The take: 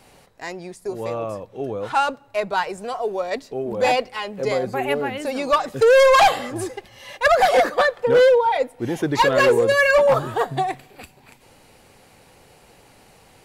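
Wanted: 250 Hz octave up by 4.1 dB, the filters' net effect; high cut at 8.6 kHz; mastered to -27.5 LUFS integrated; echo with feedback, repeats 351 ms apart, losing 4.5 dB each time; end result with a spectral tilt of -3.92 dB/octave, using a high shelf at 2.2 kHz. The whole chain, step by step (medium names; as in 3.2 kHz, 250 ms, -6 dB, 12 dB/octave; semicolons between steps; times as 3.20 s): low-pass 8.6 kHz; peaking EQ 250 Hz +5.5 dB; treble shelf 2.2 kHz -8 dB; feedback delay 351 ms, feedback 60%, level -4.5 dB; trim -9.5 dB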